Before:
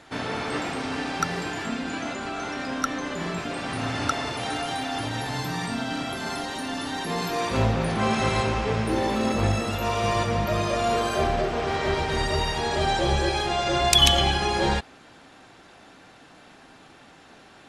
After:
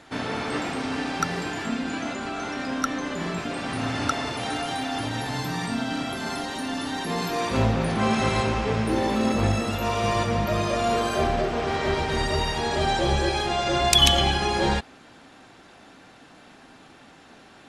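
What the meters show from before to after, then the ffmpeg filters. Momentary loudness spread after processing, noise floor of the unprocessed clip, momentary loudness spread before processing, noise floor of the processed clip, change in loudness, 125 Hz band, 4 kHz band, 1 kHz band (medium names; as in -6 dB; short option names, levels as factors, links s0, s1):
7 LU, -51 dBFS, 7 LU, -50 dBFS, +0.5 dB, +0.5 dB, 0.0 dB, 0.0 dB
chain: -af "equalizer=f=240:w=2.4:g=3"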